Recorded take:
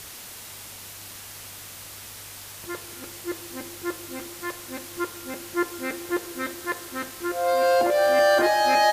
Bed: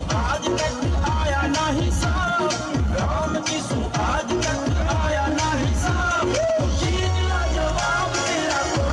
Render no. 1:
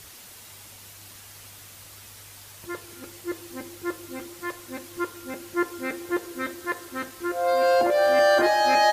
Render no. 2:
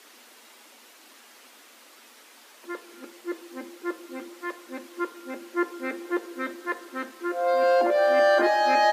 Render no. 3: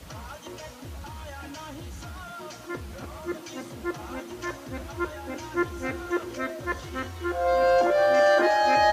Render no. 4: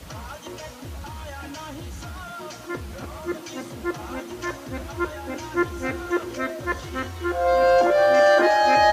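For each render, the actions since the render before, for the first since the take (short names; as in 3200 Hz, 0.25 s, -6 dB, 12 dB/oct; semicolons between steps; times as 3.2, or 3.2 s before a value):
denoiser 6 dB, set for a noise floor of -41 dBFS
Chebyshev high-pass 220 Hz, order 10; high shelf 5300 Hz -11 dB
add bed -18.5 dB
gain +3.5 dB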